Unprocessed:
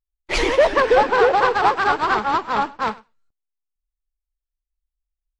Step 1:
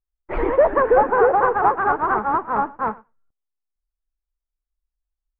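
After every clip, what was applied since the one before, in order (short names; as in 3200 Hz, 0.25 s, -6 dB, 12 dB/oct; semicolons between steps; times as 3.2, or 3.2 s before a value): LPF 1500 Hz 24 dB/oct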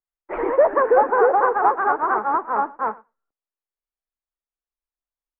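three-band isolator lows -19 dB, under 260 Hz, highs -20 dB, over 2500 Hz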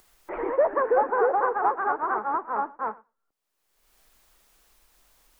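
upward compressor, threshold -26 dBFS; gain -6 dB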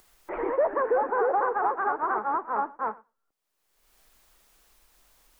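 limiter -16 dBFS, peak gain reduction 5.5 dB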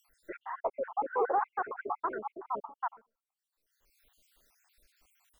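random spectral dropouts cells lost 64%; gain -3 dB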